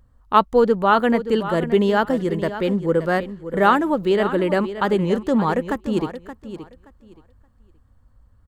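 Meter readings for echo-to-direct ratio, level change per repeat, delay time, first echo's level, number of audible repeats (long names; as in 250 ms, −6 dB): −12.0 dB, −14.0 dB, 574 ms, −12.0 dB, 2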